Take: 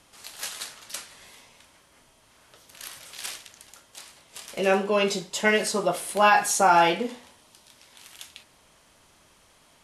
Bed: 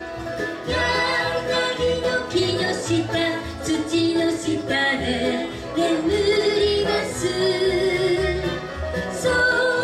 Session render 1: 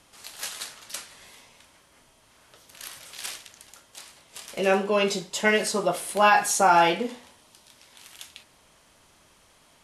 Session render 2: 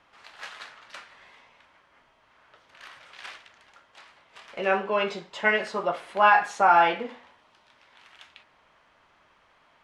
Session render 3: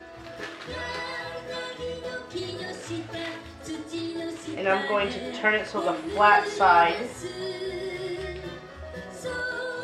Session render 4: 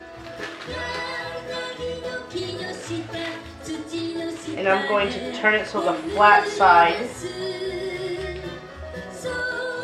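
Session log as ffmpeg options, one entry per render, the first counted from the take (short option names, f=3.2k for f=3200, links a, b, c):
-af anull
-af "lowpass=1.5k,tiltshelf=f=790:g=-9"
-filter_complex "[1:a]volume=-12.5dB[a];[0:a][a]amix=inputs=2:normalize=0"
-af "volume=4dB"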